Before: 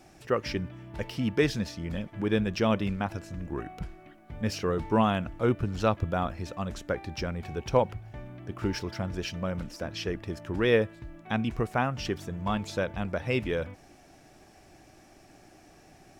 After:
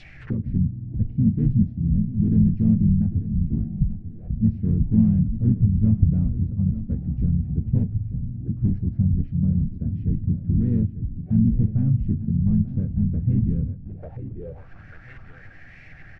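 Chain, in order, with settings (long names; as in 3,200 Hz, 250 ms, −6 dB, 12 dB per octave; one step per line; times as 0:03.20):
pitch-shifted copies added −4 semitones −5 dB, −3 semitones −14 dB
low-shelf EQ 160 Hz +6.5 dB
in parallel at −4.5 dB: wrap-around overflow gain 18 dB
on the sum: flat-topped bell 520 Hz −14.5 dB 2.9 octaves
repeating echo 892 ms, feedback 28%, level −13 dB
on a send at −12 dB: convolution reverb RT60 0.20 s, pre-delay 4 ms
on the sum: envelope-controlled low-pass 230–4,000 Hz down, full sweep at −33 dBFS
level +4 dB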